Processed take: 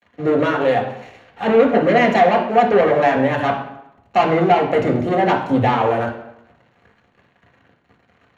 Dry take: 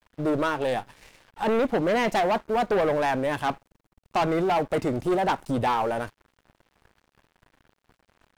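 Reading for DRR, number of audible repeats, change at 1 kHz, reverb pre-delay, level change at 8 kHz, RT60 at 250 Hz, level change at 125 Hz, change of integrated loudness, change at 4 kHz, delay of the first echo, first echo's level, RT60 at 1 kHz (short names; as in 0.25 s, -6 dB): 0.0 dB, none, +8.5 dB, 3 ms, n/a, 0.75 s, +9.5 dB, +8.5 dB, +5.5 dB, none, none, 0.85 s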